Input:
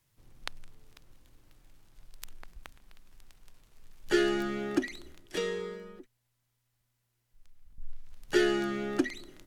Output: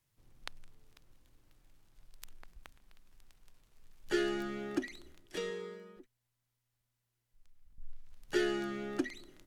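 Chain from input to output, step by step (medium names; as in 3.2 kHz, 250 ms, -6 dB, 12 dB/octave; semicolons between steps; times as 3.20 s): 5.50–5.97 s: high-pass 120 Hz 12 dB/octave; trim -6 dB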